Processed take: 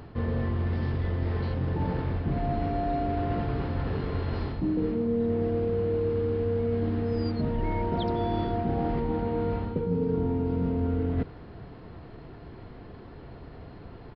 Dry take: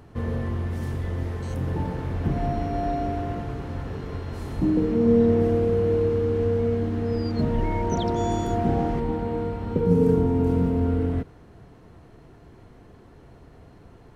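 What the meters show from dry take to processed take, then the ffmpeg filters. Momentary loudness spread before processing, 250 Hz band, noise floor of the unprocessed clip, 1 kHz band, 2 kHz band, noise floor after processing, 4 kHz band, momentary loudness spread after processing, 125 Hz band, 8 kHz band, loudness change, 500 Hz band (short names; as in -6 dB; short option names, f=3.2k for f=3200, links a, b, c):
11 LU, -4.5 dB, -50 dBFS, -2.5 dB, -1.5 dB, -45 dBFS, -2.5 dB, 18 LU, -3.0 dB, n/a, -4.0 dB, -5.0 dB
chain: -af "areverse,acompressor=threshold=-29dB:ratio=6,areverse,aresample=11025,aresample=44100,volume=4.5dB"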